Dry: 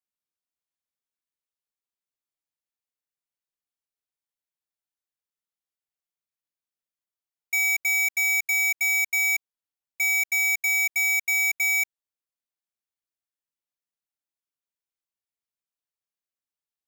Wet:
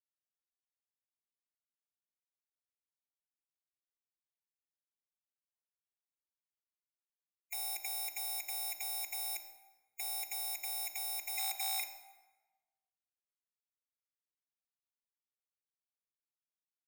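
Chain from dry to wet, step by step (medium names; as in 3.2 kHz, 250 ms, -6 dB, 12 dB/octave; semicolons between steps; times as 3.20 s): 11.38–11.80 s: steep high-pass 600 Hz 96 dB/octave; spectral gate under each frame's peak -20 dB weak; in parallel at -0.5 dB: peak limiter -30.5 dBFS, peak gain reduction 8.5 dB; on the sum: saturation -29.5 dBFS, distortion -9 dB; plate-style reverb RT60 1.3 s, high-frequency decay 0.65×, pre-delay 0 ms, DRR 7.5 dB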